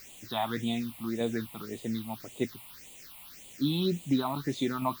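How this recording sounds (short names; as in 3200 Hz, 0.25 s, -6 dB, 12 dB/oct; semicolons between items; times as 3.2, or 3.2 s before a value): tremolo saw down 0.83 Hz, depth 40%; a quantiser's noise floor 8-bit, dither triangular; phasing stages 6, 1.8 Hz, lowest notch 410–1500 Hz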